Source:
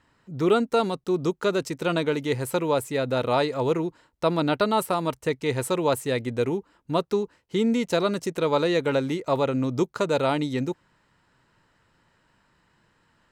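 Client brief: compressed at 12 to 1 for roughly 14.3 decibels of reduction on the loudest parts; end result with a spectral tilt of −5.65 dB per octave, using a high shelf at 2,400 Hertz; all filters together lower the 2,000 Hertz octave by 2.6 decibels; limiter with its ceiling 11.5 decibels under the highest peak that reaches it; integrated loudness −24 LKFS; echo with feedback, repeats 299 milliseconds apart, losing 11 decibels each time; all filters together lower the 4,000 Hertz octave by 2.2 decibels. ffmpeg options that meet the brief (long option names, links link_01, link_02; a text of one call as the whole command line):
ffmpeg -i in.wav -af "equalizer=frequency=2000:width_type=o:gain=-4.5,highshelf=frequency=2400:gain=3.5,equalizer=frequency=4000:width_type=o:gain=-4,acompressor=threshold=-32dB:ratio=12,alimiter=level_in=7dB:limit=-24dB:level=0:latency=1,volume=-7dB,aecho=1:1:299|598|897:0.282|0.0789|0.0221,volume=15.5dB" out.wav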